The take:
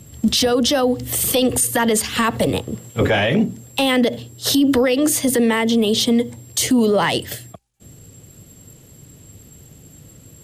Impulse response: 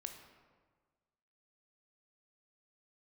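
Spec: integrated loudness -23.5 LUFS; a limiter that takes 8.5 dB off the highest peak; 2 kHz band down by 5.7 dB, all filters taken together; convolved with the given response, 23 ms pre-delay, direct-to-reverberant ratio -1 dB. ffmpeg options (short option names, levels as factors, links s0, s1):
-filter_complex "[0:a]equalizer=f=2000:t=o:g=-7,alimiter=limit=0.141:level=0:latency=1,asplit=2[s0][s1];[1:a]atrim=start_sample=2205,adelay=23[s2];[s1][s2]afir=irnorm=-1:irlink=0,volume=1.68[s3];[s0][s3]amix=inputs=2:normalize=0,volume=0.841"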